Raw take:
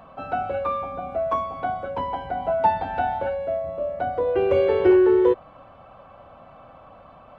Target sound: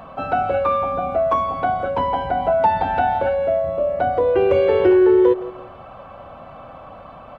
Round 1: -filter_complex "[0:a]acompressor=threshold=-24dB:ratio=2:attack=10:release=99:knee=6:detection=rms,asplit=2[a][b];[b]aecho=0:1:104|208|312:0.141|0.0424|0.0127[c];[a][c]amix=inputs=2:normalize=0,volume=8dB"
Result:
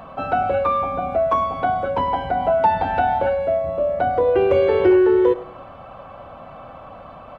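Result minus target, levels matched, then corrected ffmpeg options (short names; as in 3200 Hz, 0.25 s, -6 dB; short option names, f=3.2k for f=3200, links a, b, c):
echo 64 ms early
-filter_complex "[0:a]acompressor=threshold=-24dB:ratio=2:attack=10:release=99:knee=6:detection=rms,asplit=2[a][b];[b]aecho=0:1:168|336|504:0.141|0.0424|0.0127[c];[a][c]amix=inputs=2:normalize=0,volume=8dB"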